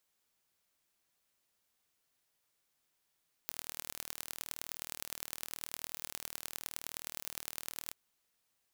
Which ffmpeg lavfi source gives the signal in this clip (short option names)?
-f lavfi -i "aevalsrc='0.299*eq(mod(n,1128),0)*(0.5+0.5*eq(mod(n,4512),0))':d=4.43:s=44100"